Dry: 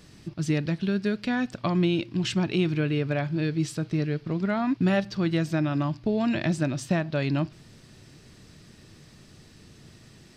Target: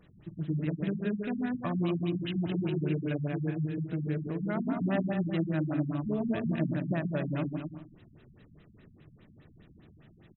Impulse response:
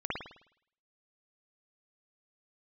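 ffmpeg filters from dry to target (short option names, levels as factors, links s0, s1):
-filter_complex "[0:a]aecho=1:1:140|238|306.6|354.6|388.2:0.631|0.398|0.251|0.158|0.1,asplit=2[s0][s1];[1:a]atrim=start_sample=2205[s2];[s1][s2]afir=irnorm=-1:irlink=0,volume=0.188[s3];[s0][s3]amix=inputs=2:normalize=0,afftfilt=real='re*lt(b*sr/1024,230*pow(4100/230,0.5+0.5*sin(2*PI*4.9*pts/sr)))':imag='im*lt(b*sr/1024,230*pow(4100/230,0.5+0.5*sin(2*PI*4.9*pts/sr)))':win_size=1024:overlap=0.75,volume=0.398"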